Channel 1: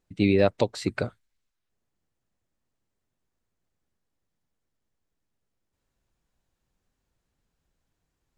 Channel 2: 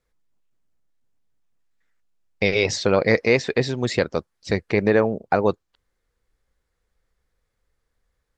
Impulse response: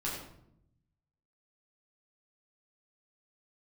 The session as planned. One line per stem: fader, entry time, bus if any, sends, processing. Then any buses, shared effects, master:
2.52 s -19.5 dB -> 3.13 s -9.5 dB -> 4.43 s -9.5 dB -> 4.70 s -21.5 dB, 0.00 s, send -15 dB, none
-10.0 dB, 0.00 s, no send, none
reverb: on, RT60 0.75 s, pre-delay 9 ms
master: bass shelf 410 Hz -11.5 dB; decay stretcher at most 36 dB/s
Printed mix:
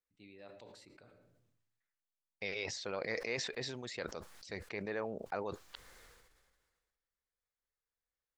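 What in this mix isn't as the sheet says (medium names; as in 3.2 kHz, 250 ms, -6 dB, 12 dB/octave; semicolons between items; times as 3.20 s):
stem 1 -19.5 dB -> -30.0 dB; stem 2 -10.0 dB -> -17.5 dB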